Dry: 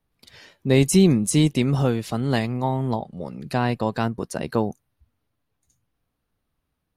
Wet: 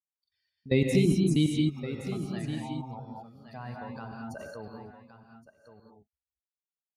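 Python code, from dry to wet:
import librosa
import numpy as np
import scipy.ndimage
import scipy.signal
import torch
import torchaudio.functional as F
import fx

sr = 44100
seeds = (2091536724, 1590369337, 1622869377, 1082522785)

y = fx.bin_expand(x, sr, power=2.0)
y = scipy.signal.sosfilt(scipy.signal.butter(2, 60.0, 'highpass', fs=sr, output='sos'), y)
y = fx.notch(y, sr, hz=690.0, q=16.0)
y = fx.level_steps(y, sr, step_db=20)
y = y + 10.0 ** (-11.5 / 20.0) * np.pad(y, (int(1119 * sr / 1000.0), 0))[:len(y)]
y = fx.rev_gated(y, sr, seeds[0], gate_ms=250, shape='rising', drr_db=0.5)
y = fx.sustainer(y, sr, db_per_s=21.0, at=(3.91, 4.65))
y = y * 10.0 ** (-2.0 / 20.0)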